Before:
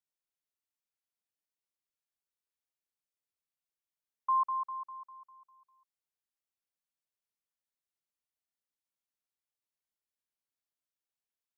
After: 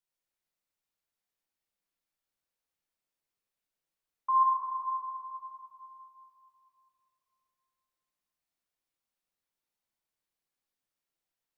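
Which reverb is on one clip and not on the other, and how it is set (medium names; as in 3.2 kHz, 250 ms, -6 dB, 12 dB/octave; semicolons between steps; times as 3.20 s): simulated room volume 150 m³, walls hard, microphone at 0.76 m; trim -1 dB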